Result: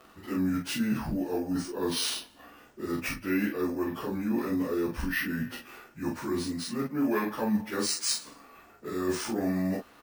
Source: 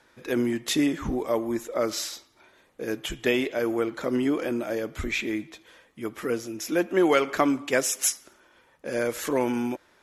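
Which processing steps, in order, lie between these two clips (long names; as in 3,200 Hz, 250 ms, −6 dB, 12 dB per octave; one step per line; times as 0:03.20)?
phase-vocoder pitch shift without resampling −4.5 semitones
reversed playback
downward compressor 6 to 1, threshold −35 dBFS, peak gain reduction 16 dB
reversed playback
ambience of single reflections 14 ms −4 dB, 43 ms −3.5 dB
bad sample-rate conversion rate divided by 3×, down none, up hold
level +5.5 dB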